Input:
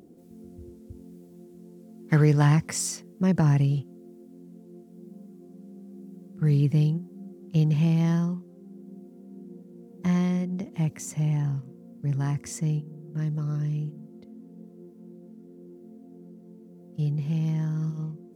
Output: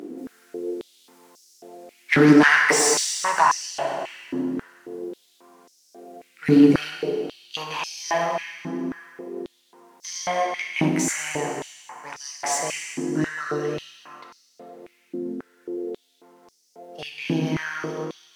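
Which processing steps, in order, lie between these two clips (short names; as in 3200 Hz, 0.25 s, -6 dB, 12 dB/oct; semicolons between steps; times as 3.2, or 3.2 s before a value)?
overdrive pedal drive 20 dB, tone 4600 Hz, clips at -8.5 dBFS; plate-style reverb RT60 2.6 s, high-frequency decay 0.75×, DRR 0 dB; stepped high-pass 3.7 Hz 280–5400 Hz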